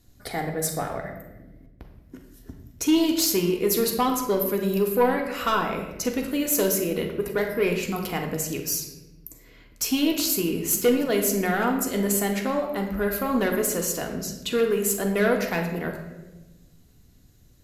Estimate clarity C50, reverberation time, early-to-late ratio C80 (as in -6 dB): 6.0 dB, 1.1 s, 8.5 dB